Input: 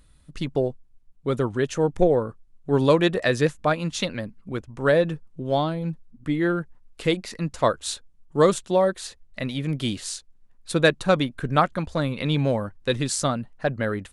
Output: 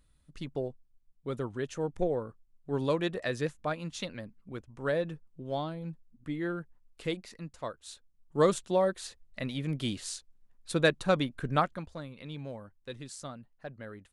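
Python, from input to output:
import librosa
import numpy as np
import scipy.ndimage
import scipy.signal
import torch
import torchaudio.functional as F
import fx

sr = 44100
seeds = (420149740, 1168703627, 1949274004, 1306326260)

y = fx.gain(x, sr, db=fx.line((7.15, -11.0), (7.79, -19.0), (8.42, -6.5), (11.56, -6.5), (12.07, -18.5)))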